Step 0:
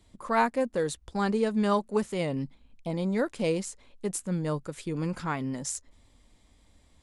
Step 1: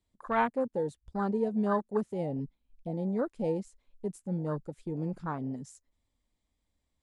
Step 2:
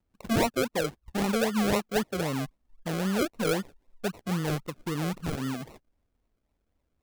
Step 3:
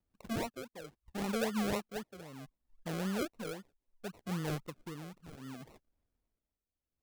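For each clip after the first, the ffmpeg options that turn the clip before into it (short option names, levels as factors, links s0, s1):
-af "afwtdn=0.0282,volume=0.708"
-filter_complex "[0:a]asplit=2[s0][s1];[s1]volume=25.1,asoftclip=hard,volume=0.0398,volume=0.562[s2];[s0][s2]amix=inputs=2:normalize=0,acrusher=samples=38:mix=1:aa=0.000001:lfo=1:lforange=22.8:lforate=3.8"
-af "tremolo=f=0.67:d=0.78,volume=0.447"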